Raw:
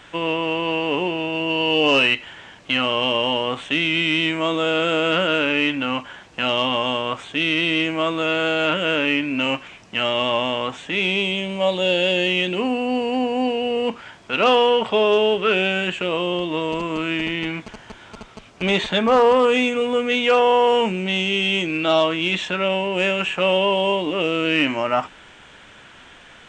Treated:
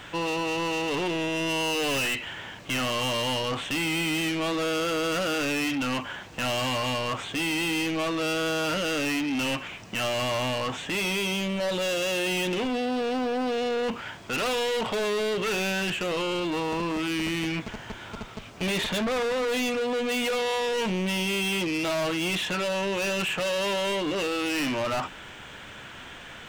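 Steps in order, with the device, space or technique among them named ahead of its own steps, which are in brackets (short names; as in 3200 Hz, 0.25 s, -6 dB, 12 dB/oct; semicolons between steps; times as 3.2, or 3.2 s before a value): open-reel tape (soft clip -28 dBFS, distortion -5 dB; bell 110 Hz +3.5 dB 1.11 oct; white noise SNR 40 dB); gain +2.5 dB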